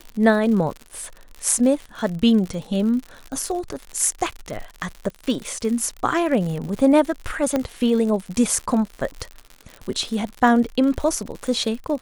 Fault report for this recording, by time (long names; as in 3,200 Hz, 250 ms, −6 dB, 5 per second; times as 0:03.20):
surface crackle 89 per second −28 dBFS
0:07.56: click −9 dBFS